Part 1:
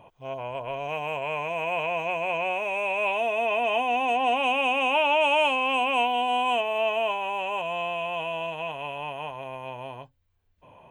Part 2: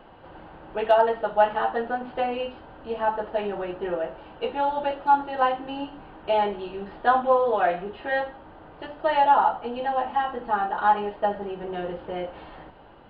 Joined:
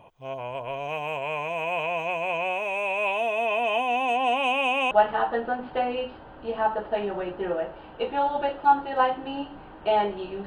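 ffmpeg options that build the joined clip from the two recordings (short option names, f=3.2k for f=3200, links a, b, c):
-filter_complex "[0:a]apad=whole_dur=10.46,atrim=end=10.46,atrim=end=4.912[a];[1:a]atrim=start=1.328:end=6.88[b];[a][b]acrossfade=d=0.004:c1=hsin:c2=hsin"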